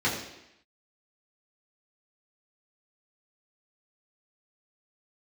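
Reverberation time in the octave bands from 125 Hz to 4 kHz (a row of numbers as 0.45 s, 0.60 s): 0.70 s, 0.85 s, 0.80 s, 0.85 s, 0.95 s, 0.85 s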